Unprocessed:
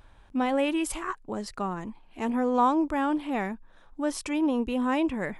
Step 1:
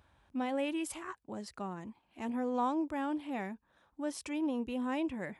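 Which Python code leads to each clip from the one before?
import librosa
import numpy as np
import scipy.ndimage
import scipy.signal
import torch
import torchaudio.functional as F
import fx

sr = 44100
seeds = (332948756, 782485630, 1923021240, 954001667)

y = fx.dynamic_eq(x, sr, hz=1200.0, q=2.1, threshold_db=-45.0, ratio=4.0, max_db=-4)
y = scipy.signal.sosfilt(scipy.signal.butter(4, 56.0, 'highpass', fs=sr, output='sos'), y)
y = fx.notch(y, sr, hz=440.0, q=12.0)
y = y * librosa.db_to_amplitude(-8.0)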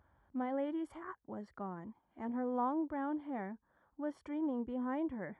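y = scipy.signal.savgol_filter(x, 41, 4, mode='constant')
y = y * librosa.db_to_amplitude(-2.5)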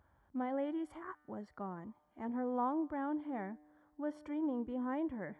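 y = fx.comb_fb(x, sr, f0_hz=150.0, decay_s=1.7, harmonics='all', damping=0.0, mix_pct=40)
y = y * librosa.db_to_amplitude(4.0)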